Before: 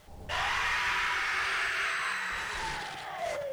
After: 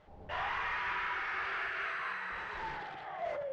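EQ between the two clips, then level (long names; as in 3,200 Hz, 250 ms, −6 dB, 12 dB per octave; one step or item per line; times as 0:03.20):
head-to-tape spacing loss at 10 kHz 26 dB
low-shelf EQ 230 Hz −8 dB
high-shelf EQ 4,200 Hz −9.5 dB
0.0 dB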